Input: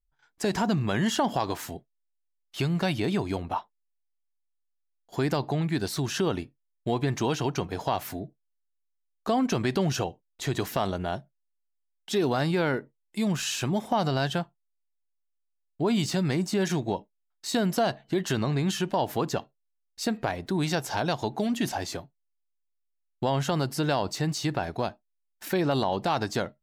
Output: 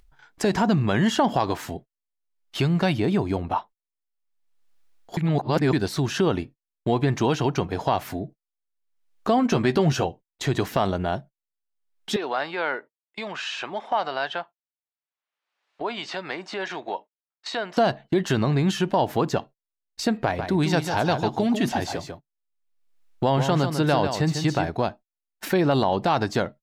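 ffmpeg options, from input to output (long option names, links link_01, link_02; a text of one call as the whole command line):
ffmpeg -i in.wav -filter_complex "[0:a]asettb=1/sr,asplit=3[link_01][link_02][link_03];[link_01]atrim=end=2.974[link_04];[link_02]atrim=start=2.97:end=3.44,asetpts=PTS-STARTPTS,afade=type=in:duration=0.004:curve=qsin,afade=type=out:start_time=0.466:duration=0.004:curve=qsin,equalizer=frequency=3500:width=0.42:gain=-4[link_05];[link_03]atrim=start=3.436[link_06];[link_04][link_05]acrossfade=duration=0.004:curve1=hsin:curve2=qsin[link_07];[link_07][link_06]acrossfade=duration=0.004:curve1=qsin:curve2=hsin,asettb=1/sr,asplit=3[link_08][link_09][link_10];[link_08]atrim=end=9.374[link_11];[link_09]atrim=start=9.37:end=10.07,asetpts=PTS-STARTPTS,afade=type=in:duration=0.004:curve=qsin,afade=type=out:start_time=0.696:duration=0.004:curve=qsin,asplit=2[link_12][link_13];[link_13]adelay=13,volume=-9dB[link_14];[link_12][link_14]amix=inputs=2:normalize=0,atrim=end_sample=30870[link_15];[link_10]atrim=start=10.066[link_16];[link_11][link_15]acrossfade=duration=0.004:curve1=hsin:curve2=qsin[link_17];[link_17][link_16]acrossfade=duration=0.004:curve1=qsin:curve2=hsin,asettb=1/sr,asplit=3[link_18][link_19][link_20];[link_18]atrim=end=12.164[link_21];[link_19]atrim=start=12.16:end=17.77,asetpts=PTS-STARTPTS,afade=type=in:duration=0.004:curve=qsin,afade=type=out:start_time=5.606:duration=0.004:curve=qsin,highpass=690,lowpass=3500[link_22];[link_20]atrim=start=17.766[link_23];[link_21][link_22]acrossfade=duration=0.004:curve1=hsin:curve2=qsin[link_24];[link_24][link_23]acrossfade=duration=0.004:curve1=qsin:curve2=hsin,asettb=1/sr,asplit=3[link_25][link_26][link_27];[link_25]atrim=end=20.244[link_28];[link_26]atrim=start=20.24:end=24.68,asetpts=PTS-STARTPTS,afade=type=in:duration=0.004:curve=qsin,afade=type=out:start_time=4.436:duration=0.004:curve=qsin,aecho=1:1:147:0.422,atrim=end_sample=195804[link_29];[link_27]atrim=start=24.676[link_30];[link_28][link_29]acrossfade=duration=0.004:curve1=hsin:curve2=qsin[link_31];[link_31][link_30]acrossfade=duration=0.004:curve1=qsin:curve2=hsin,asplit=3[link_32][link_33][link_34];[link_32]atrim=end=5.172[link_35];[link_33]atrim=start=5.168:end=5.732,asetpts=PTS-STARTPTS,areverse[link_36];[link_34]atrim=start=5.728[link_37];[link_35][link_36]acrossfade=duration=0.004:curve1=hsin:curve2=hsin[link_38];[link_38][link_37]acrossfade=duration=0.004:curve1=hsin:curve2=hsin,agate=range=-24dB:threshold=-45dB:ratio=16:detection=peak,highshelf=frequency=5500:gain=-9.5,acompressor=mode=upward:threshold=-33dB:ratio=2.5,volume=5dB" out.wav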